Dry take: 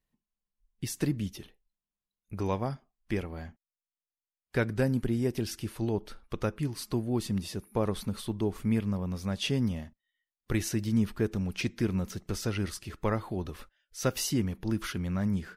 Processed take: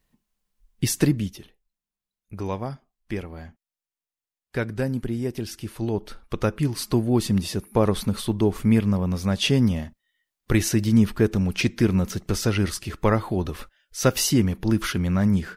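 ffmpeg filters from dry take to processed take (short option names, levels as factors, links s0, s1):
-af "volume=9.44,afade=t=out:st=0.88:d=0.5:silence=0.298538,afade=t=in:st=5.56:d=1.25:silence=0.421697"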